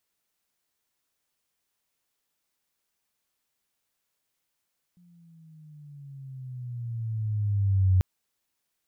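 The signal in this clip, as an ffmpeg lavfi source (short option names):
-f lavfi -i "aevalsrc='pow(10,(-16.5+38*(t/3.04-1))/20)*sin(2*PI*178*3.04/(-11.5*log(2)/12)*(exp(-11.5*log(2)/12*t/3.04)-1))':d=3.04:s=44100"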